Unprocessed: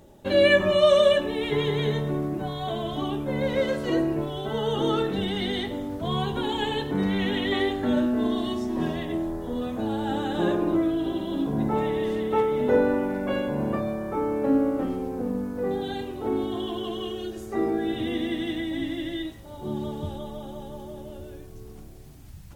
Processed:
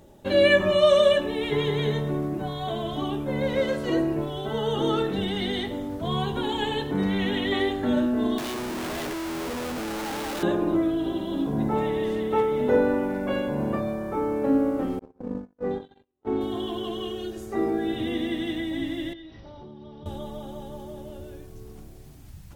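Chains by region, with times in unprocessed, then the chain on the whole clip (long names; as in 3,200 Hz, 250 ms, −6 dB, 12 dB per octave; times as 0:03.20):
0:08.38–0:10.43: variable-slope delta modulation 32 kbit/s + high-pass filter 290 Hz + comparator with hysteresis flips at −43.5 dBFS
0:14.99–0:16.41: noise gate −28 dBFS, range −47 dB + high-frequency loss of the air 94 metres
0:19.13–0:20.06: linear-phase brick-wall low-pass 6,000 Hz + downward compressor 16 to 1, threshold −39 dBFS
whole clip: no processing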